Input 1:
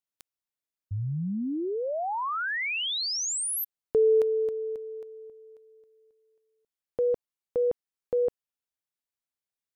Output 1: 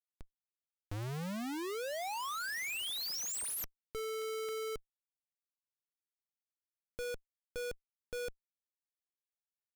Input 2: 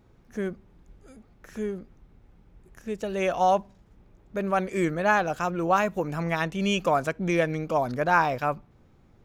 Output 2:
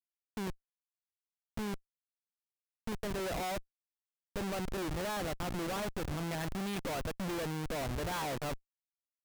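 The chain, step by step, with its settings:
comparator with hysteresis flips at −31 dBFS
level −8 dB

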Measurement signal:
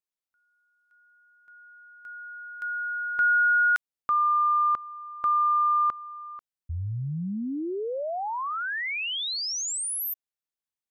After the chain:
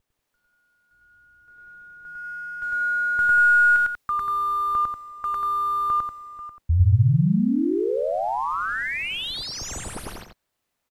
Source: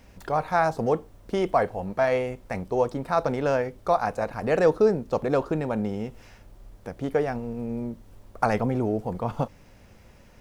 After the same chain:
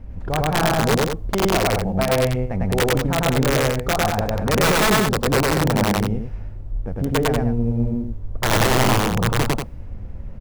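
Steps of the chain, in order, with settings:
variable-slope delta modulation 64 kbit/s
RIAA equalisation playback
in parallel at −2 dB: downward compressor 20 to 1, threshold −29 dBFS
on the sum: wrap-around overflow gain 10 dB
bit-depth reduction 12 bits, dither triangular
on a send: loudspeakers that aren't time-aligned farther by 35 metres 0 dB, 65 metres −6 dB
on the sum: one half of a high-frequency compander decoder only
level −3 dB

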